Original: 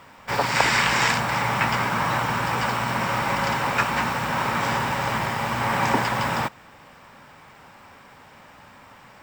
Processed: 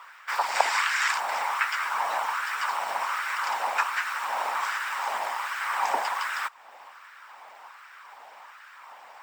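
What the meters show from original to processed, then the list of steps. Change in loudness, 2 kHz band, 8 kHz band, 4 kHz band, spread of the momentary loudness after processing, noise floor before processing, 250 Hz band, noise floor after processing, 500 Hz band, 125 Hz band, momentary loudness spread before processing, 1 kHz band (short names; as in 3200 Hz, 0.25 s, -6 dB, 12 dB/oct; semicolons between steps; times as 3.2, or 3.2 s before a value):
-4.5 dB, -4.0 dB, -4.5 dB, -6.0 dB, 23 LU, -49 dBFS, under -25 dB, -50 dBFS, -9.0 dB, under -40 dB, 6 LU, -3.5 dB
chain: harmonic-percussive split harmonic -9 dB; LFO high-pass sine 1.3 Hz 690–1500 Hz; dynamic EQ 9800 Hz, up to +5 dB, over -44 dBFS, Q 0.74; in parallel at +2.5 dB: compressor, threshold -38 dBFS, peak gain reduction 26 dB; on the sum: gain -6.5 dB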